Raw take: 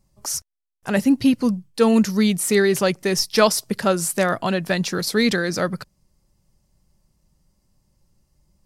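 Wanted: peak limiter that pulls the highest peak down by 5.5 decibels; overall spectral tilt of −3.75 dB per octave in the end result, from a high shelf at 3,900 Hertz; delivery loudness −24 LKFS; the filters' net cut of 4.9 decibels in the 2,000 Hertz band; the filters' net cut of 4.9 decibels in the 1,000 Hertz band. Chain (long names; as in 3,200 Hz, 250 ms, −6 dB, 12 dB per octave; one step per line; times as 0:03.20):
parametric band 1,000 Hz −5.5 dB
parametric band 2,000 Hz −6.5 dB
high-shelf EQ 3,900 Hz +9 dB
level −3.5 dB
brickwall limiter −13 dBFS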